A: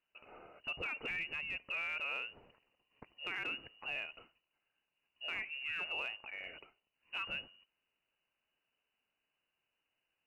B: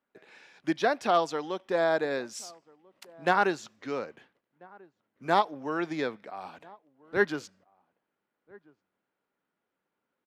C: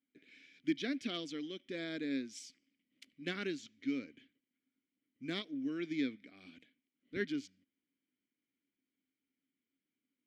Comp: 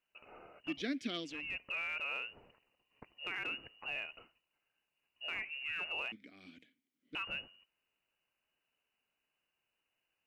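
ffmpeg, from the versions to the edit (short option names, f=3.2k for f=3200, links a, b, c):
-filter_complex "[2:a]asplit=2[a][b];[0:a]asplit=3[c][d][e];[c]atrim=end=0.84[f];[a]atrim=start=0.6:end=1.47[g];[d]atrim=start=1.23:end=6.122[h];[b]atrim=start=6.118:end=7.152[i];[e]atrim=start=7.148[j];[f][g]acrossfade=d=0.24:c1=tri:c2=tri[k];[k][h]acrossfade=d=0.24:c1=tri:c2=tri[l];[l][i]acrossfade=d=0.004:c1=hsin:c2=hsin[m];[m][j]acrossfade=d=0.004:c1=hsin:c2=hsin"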